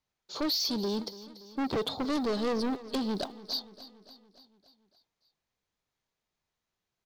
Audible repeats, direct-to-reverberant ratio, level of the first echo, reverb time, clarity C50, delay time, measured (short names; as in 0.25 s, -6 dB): 4, none, -17.0 dB, none, none, 0.286 s